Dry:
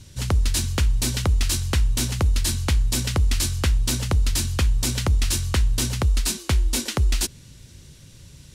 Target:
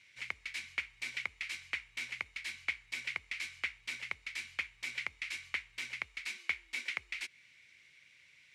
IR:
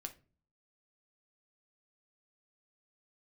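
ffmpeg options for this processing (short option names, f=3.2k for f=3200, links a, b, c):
-filter_complex "[0:a]asplit=2[a][b];[b]acompressor=threshold=-26dB:ratio=6,volume=3dB[c];[a][c]amix=inputs=2:normalize=0,bandpass=f=2.2k:t=q:w=9.6:csg=0"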